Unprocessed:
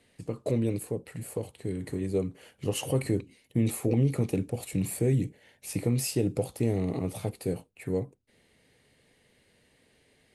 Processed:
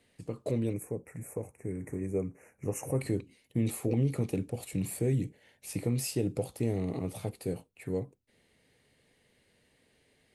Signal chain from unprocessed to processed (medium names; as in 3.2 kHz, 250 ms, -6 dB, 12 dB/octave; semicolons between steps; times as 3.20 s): 0.73–3.00 s: elliptic band-stop 2.4–5.8 kHz, stop band 40 dB; trim -3.5 dB